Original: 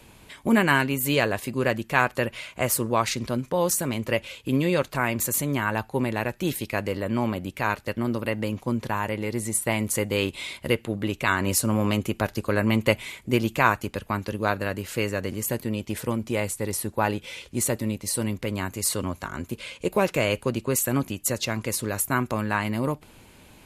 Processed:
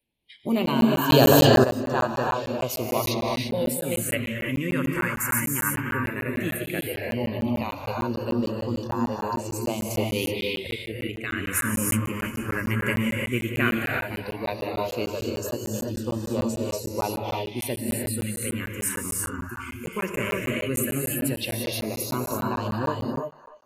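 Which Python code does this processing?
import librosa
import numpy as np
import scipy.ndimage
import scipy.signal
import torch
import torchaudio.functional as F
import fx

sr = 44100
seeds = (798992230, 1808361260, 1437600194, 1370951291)

p1 = fx.spec_quant(x, sr, step_db=15)
p2 = fx.level_steps(p1, sr, step_db=9, at=(10.67, 11.51))
p3 = fx.noise_reduce_blind(p2, sr, reduce_db=27)
p4 = p3 + fx.echo_wet_bandpass(p3, sr, ms=295, feedback_pct=32, hz=1300.0, wet_db=-13.0, dry=0)
p5 = fx.rev_gated(p4, sr, seeds[0], gate_ms=370, shape='rising', drr_db=-1.0)
p6 = fx.phaser_stages(p5, sr, stages=4, low_hz=680.0, high_hz=2200.0, hz=0.14, feedback_pct=5)
p7 = fx.low_shelf(p6, sr, hz=320.0, db=-4.5)
p8 = fx.hum_notches(p7, sr, base_hz=50, count=4)
p9 = fx.buffer_crackle(p8, sr, first_s=0.66, period_s=0.15, block=512, kind='zero')
y = fx.env_flatten(p9, sr, amount_pct=100, at=(1.09, 1.63), fade=0.02)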